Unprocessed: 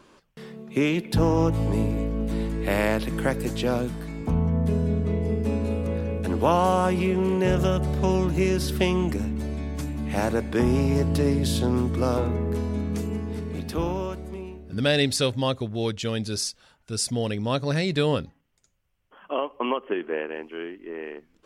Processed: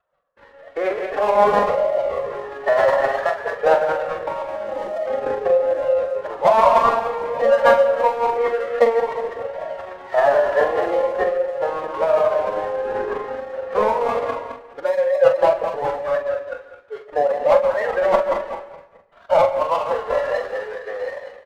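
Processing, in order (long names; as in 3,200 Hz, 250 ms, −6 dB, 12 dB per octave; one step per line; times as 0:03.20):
feedback delay that plays each chunk backwards 106 ms, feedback 65%, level −4 dB
Chebyshev band-pass filter 540–1,800 Hz, order 3
gate on every frequency bin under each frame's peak −25 dB strong
spectral tilt −3 dB per octave
in parallel at +0.5 dB: downward compressor, threshold −35 dBFS, peak gain reduction 18 dB
on the sum: leveller curve on the samples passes 1
automatic gain control gain up to 10.5 dB
flanger 0.52 Hz, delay 1.4 ms, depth 2.5 ms, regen −18%
power curve on the samples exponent 1.4
phase-vocoder pitch shift with formants kept +4 semitones
double-tracking delay 44 ms −8 dB
on a send at −14 dB: convolution reverb RT60 0.70 s, pre-delay 117 ms
on the sum: level +2.5 dB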